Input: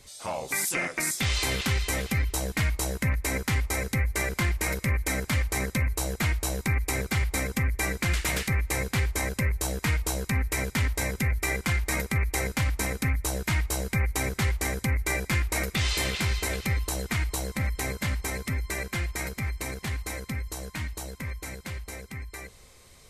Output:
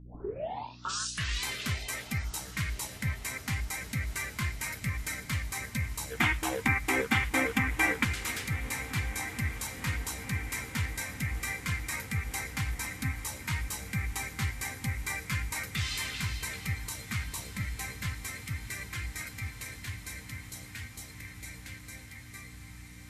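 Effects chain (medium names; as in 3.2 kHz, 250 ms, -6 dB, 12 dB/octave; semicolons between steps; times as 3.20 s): tape start-up on the opening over 1.46 s; time-frequency box 6.11–8.04 s, 210–3700 Hz +10 dB; spectral noise reduction 12 dB; hum 60 Hz, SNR 15 dB; flange 0.79 Hz, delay 6.4 ms, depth 2 ms, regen -54%; echo that smears into a reverb 1444 ms, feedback 74%, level -14.5 dB; trim -1.5 dB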